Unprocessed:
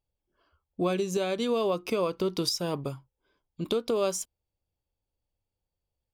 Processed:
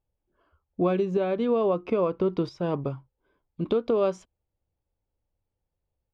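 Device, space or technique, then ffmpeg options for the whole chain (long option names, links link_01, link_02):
phone in a pocket: -filter_complex "[0:a]asettb=1/sr,asplit=3[link_01][link_02][link_03];[link_01]atrim=end=1.054[link_04];[link_02]atrim=start=1.05:end=2.63,asetpts=PTS-STARTPTS,afade=type=in:duration=0.004:curve=qsin,afade=type=out:start_time=1.576:duration=0.004:curve=qsin,equalizer=frequency=7000:width=0.46:gain=-5.5[link_05];[link_03]atrim=start=2.626[link_06];[link_04][link_05]acrossfade=duration=0.004:curve1=hsin:curve2=qsin[link_07];[link_07][link_06]acrossfade=duration=0.004:curve1=qsin:curve2=hsin,lowpass=3000,highshelf=frequency=2200:gain=-9.5,volume=4dB"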